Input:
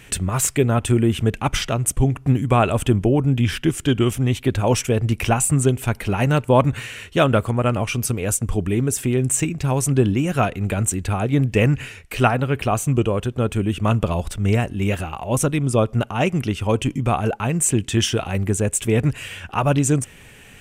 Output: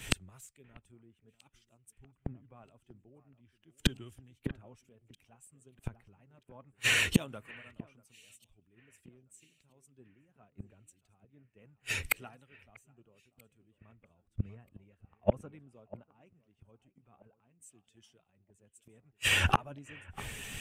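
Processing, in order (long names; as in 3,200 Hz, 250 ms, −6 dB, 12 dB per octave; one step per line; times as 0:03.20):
spectral magnitudes quantised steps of 15 dB
0:07.14–0:07.81: high-shelf EQ 3,600 Hz +12 dB
gate with flip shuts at −18 dBFS, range −37 dB
delay that swaps between a low-pass and a high-pass 641 ms, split 2,500 Hz, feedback 61%, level −13 dB
multiband upward and downward expander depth 100%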